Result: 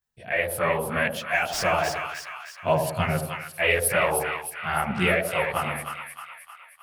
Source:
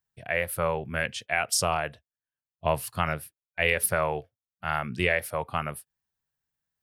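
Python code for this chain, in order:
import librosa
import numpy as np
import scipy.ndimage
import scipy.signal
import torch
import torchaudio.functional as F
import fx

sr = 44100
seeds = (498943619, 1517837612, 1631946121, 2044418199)

y = fx.median_filter(x, sr, points=5, at=(1.07, 2.79))
y = fx.chorus_voices(y, sr, voices=4, hz=1.3, base_ms=18, depth_ms=3.0, mix_pct=65)
y = fx.echo_split(y, sr, split_hz=1000.0, low_ms=81, high_ms=310, feedback_pct=52, wet_db=-5.0)
y = y * 10.0 ** (5.0 / 20.0)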